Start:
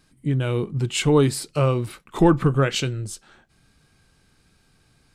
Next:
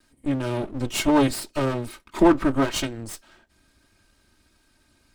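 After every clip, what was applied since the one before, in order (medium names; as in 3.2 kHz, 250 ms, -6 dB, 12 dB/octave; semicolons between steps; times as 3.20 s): comb filter that takes the minimum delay 3.2 ms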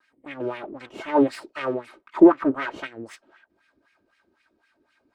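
wah-wah 3.9 Hz 330–2300 Hz, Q 2.6; trim +6.5 dB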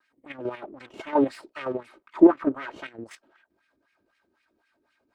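level held to a coarse grid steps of 9 dB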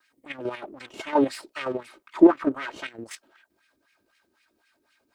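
treble shelf 2.7 kHz +11.5 dB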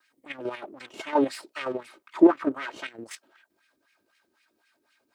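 high-pass 160 Hz 6 dB/octave; trim -1 dB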